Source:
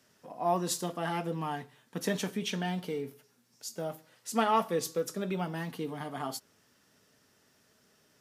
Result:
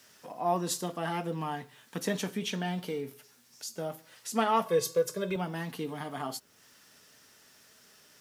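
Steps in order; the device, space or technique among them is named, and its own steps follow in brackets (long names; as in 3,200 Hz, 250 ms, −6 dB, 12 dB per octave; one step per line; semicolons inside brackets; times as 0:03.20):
0:04.66–0:05.36: comb filter 1.9 ms, depth 91%
noise-reduction cassette on a plain deck (one half of a high-frequency compander encoder only; tape wow and flutter 19 cents; white noise bed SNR 38 dB)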